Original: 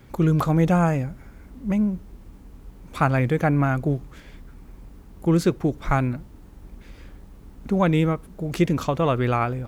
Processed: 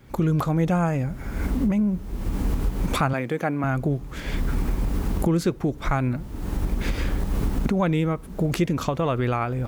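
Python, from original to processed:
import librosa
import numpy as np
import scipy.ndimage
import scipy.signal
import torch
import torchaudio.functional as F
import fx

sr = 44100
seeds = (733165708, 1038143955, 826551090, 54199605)

y = fx.recorder_agc(x, sr, target_db=-13.0, rise_db_per_s=45.0, max_gain_db=30)
y = fx.highpass(y, sr, hz=210.0, slope=12, at=(3.13, 3.64))
y = y * 10.0 ** (-3.0 / 20.0)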